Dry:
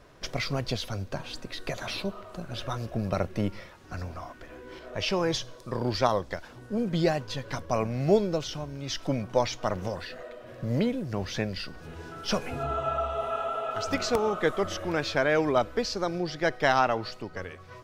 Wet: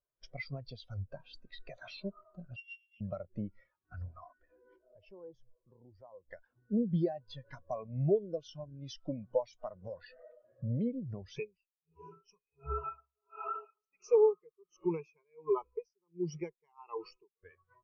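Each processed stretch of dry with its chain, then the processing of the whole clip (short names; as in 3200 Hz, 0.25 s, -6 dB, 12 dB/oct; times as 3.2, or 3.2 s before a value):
2.56–3.01 sample sorter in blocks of 16 samples + compressor 1.5:1, threshold -33 dBFS + band-pass 3300 Hz, Q 2.6
4.76–6.29 bell 3900 Hz -13.5 dB 2.3 oct + compressor 3:1, threshold -40 dBFS + Doppler distortion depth 0.17 ms
11.36–17.43 ripple EQ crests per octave 0.76, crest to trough 16 dB + dB-linear tremolo 1.4 Hz, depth 26 dB
whole clip: tilt shelf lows -4 dB, about 710 Hz; compressor 4:1, threshold -32 dBFS; spectral expander 2.5:1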